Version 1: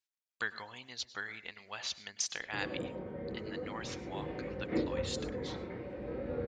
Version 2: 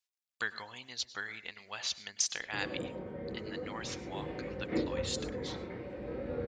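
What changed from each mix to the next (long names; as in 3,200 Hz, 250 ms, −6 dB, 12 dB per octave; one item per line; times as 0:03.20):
master: add high-shelf EQ 3,900 Hz +5.5 dB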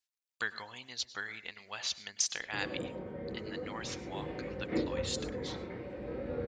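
nothing changed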